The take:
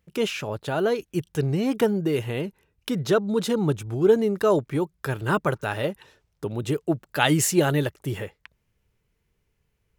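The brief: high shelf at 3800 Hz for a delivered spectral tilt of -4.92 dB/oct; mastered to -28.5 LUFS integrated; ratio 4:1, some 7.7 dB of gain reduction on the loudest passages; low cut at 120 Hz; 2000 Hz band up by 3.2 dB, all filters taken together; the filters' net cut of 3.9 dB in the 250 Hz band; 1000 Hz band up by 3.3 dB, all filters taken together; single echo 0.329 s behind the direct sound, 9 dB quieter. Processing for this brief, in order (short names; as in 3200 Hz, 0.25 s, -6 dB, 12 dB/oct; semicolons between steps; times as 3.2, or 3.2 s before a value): HPF 120 Hz; bell 250 Hz -5.5 dB; bell 1000 Hz +4 dB; bell 2000 Hz +4 dB; high shelf 3800 Hz -4.5 dB; compressor 4:1, threshold -22 dBFS; echo 0.329 s -9 dB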